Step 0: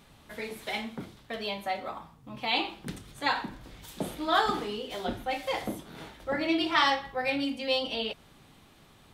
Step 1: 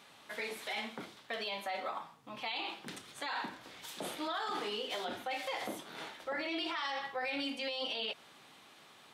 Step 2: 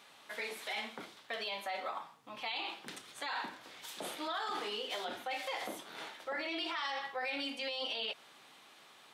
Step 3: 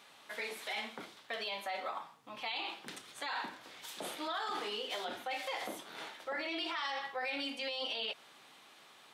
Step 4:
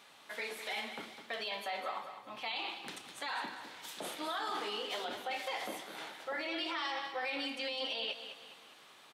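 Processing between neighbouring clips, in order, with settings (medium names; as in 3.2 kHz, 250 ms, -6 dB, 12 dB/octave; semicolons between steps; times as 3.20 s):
frequency weighting A; in parallel at +1 dB: compressor with a negative ratio -35 dBFS; on the sum: peak limiter -21 dBFS, peak gain reduction 10.5 dB; trim -7.5 dB
bass shelf 230 Hz -9.5 dB
no audible change
feedback delay 205 ms, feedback 42%, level -10 dB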